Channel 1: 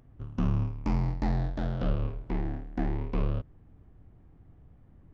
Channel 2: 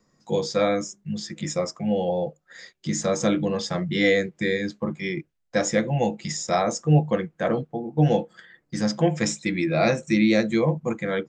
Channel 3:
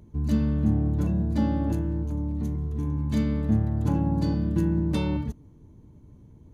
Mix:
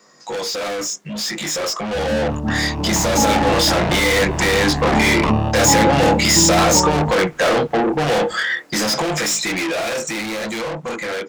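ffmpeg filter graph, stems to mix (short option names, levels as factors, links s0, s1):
-filter_complex "[0:a]aecho=1:1:1.1:0.48,adelay=2100,volume=0.75[s0];[1:a]dynaudnorm=f=240:g=7:m=2.11,flanger=delay=20:depth=8:speed=0.43,volume=0.355,asplit=2[s1][s2];[2:a]lowpass=f=860:t=q:w=4.9,adelay=1800,volume=0.841[s3];[s2]apad=whole_len=318962[s4];[s0][s4]sidechaingate=range=0.141:threshold=0.00501:ratio=16:detection=peak[s5];[s5][s1]amix=inputs=2:normalize=0,asplit=2[s6][s7];[s7]highpass=f=720:p=1,volume=79.4,asoftclip=type=tanh:threshold=0.266[s8];[s6][s8]amix=inputs=2:normalize=0,lowpass=f=6500:p=1,volume=0.501,alimiter=limit=0.0841:level=0:latency=1:release=103,volume=1[s9];[s3][s9]amix=inputs=2:normalize=0,bass=f=250:g=-6,treble=f=4000:g=2,dynaudnorm=f=260:g=21:m=4.22"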